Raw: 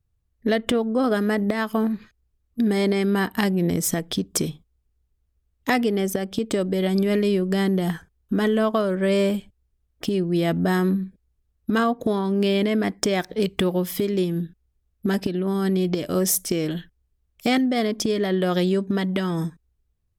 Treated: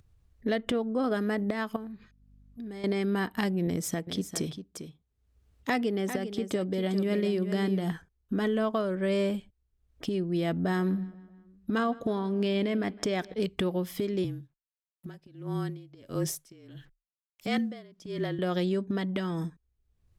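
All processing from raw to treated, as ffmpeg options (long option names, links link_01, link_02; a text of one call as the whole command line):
ffmpeg -i in.wav -filter_complex "[0:a]asettb=1/sr,asplit=3[link_01][link_02][link_03];[link_01]atrim=end=1.764[link_04];[link_02]atrim=start=1.76:end=2.84,asetpts=PTS-STARTPTS,afade=type=in:duration=0.004:curve=qsin,afade=type=out:start_time=1.076:duration=0.004:curve=qsin,acompressor=threshold=-40dB:ratio=2:attack=3.2:release=140:knee=1:detection=peak,aeval=exprs='val(0)+0.00158*(sin(2*PI*50*n/s)+sin(2*PI*2*50*n/s)/2+sin(2*PI*3*50*n/s)/3+sin(2*PI*4*50*n/s)/4+sin(2*PI*5*50*n/s)/5)':channel_layout=same[link_05];[link_03]atrim=start=2.836[link_06];[link_04][link_05]acrossfade=duration=0.004:curve1=hsin:curve2=qsin[link_07];[link_07][link_06]acrossfade=duration=0.004:curve1=qsin:curve2=hsin,asettb=1/sr,asplit=3[link_08][link_09][link_10];[link_08]atrim=end=3.674[link_11];[link_09]atrim=start=3.67:end=7.92,asetpts=PTS-STARTPTS,afade=type=in:duration=0.004:curve=qsin,afade=type=out:start_time=4.246:duration=0.004:curve=qsin,highpass=56,aecho=1:1:399:0.316,atrim=end_sample=187425[link_12];[link_10]atrim=start=7.916[link_13];[link_11][link_12]acrossfade=duration=0.004:curve1=hsin:curve2=qsin[link_14];[link_14][link_13]acrossfade=duration=0.004:curve1=qsin:curve2=hsin,asettb=1/sr,asplit=3[link_15][link_16][link_17];[link_15]atrim=end=10.494[link_18];[link_16]atrim=start=10.49:end=13.34,asetpts=PTS-STARTPTS,afade=type=in:duration=0.004:curve=qsin,afade=type=out:start_time=2.846:duration=0.004:curve=qsin,highshelf=frequency=10000:gain=-4.5,asplit=2[link_19][link_20];[link_20]adelay=157,lowpass=frequency=4500:poles=1,volume=-21dB,asplit=2[link_21][link_22];[link_22]adelay=157,lowpass=frequency=4500:poles=1,volume=0.54,asplit=2[link_23][link_24];[link_24]adelay=157,lowpass=frequency=4500:poles=1,volume=0.54,asplit=2[link_25][link_26];[link_26]adelay=157,lowpass=frequency=4500:poles=1,volume=0.54[link_27];[link_19][link_21][link_23][link_25][link_27]amix=inputs=5:normalize=0,atrim=end_sample=125685[link_28];[link_17]atrim=start=13.336[link_29];[link_18][link_28]acrossfade=duration=0.004:curve1=hsin:curve2=qsin[link_30];[link_30][link_29]acrossfade=duration=0.004:curve1=qsin:curve2=hsin,asettb=1/sr,asplit=3[link_31][link_32][link_33];[link_31]atrim=end=14.244[link_34];[link_32]atrim=start=14.24:end=18.39,asetpts=PTS-STARTPTS,afade=type=in:duration=0.004:curve=qsin,afade=type=out:start_time=4.146:duration=0.004:curve=qsin,acrusher=bits=8:mix=0:aa=0.5,afreqshift=-32,aeval=exprs='val(0)*pow(10,-23*(0.5-0.5*cos(2*PI*1.5*n/s))/20)':channel_layout=same[link_35];[link_33]atrim=start=18.386[link_36];[link_34][link_35]acrossfade=duration=0.004:curve1=hsin:curve2=qsin[link_37];[link_37][link_36]acrossfade=duration=0.004:curve1=qsin:curve2=hsin,highshelf=frequency=9700:gain=-9.5,acompressor=mode=upward:threshold=-41dB:ratio=2.5,volume=-7dB" out.wav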